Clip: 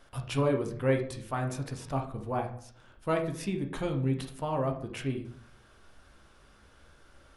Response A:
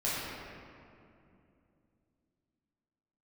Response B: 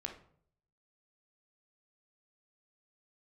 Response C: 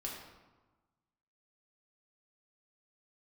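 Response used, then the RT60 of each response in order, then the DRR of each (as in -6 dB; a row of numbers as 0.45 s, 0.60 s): B; 2.7 s, 0.60 s, 1.2 s; -9.5 dB, 3.0 dB, -3.5 dB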